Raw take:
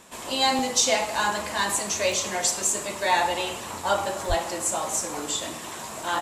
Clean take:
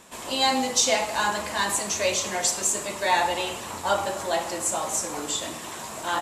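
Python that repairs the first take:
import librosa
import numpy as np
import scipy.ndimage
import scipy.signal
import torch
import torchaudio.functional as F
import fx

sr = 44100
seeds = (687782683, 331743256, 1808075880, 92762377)

y = fx.highpass(x, sr, hz=140.0, slope=24, at=(4.28, 4.4), fade=0.02)
y = fx.fix_interpolate(y, sr, at_s=(0.59, 2.12, 2.95, 4.25, 5.01), length_ms=1.2)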